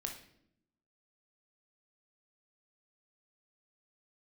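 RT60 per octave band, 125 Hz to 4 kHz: 1.0, 1.1, 0.85, 0.60, 0.60, 0.55 seconds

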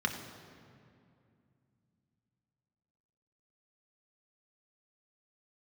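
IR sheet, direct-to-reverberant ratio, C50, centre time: 3.0 dB, 7.0 dB, 35 ms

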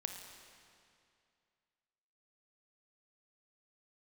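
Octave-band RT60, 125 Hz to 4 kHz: 2.5, 2.4, 2.4, 2.4, 2.3, 2.1 seconds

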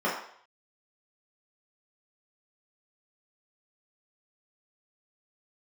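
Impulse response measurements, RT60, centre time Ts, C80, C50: 0.60 s, 41 ms, 7.5 dB, 4.5 dB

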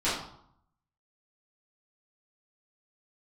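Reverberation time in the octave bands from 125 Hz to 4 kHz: 0.90, 0.75, 0.65, 0.70, 0.50, 0.50 seconds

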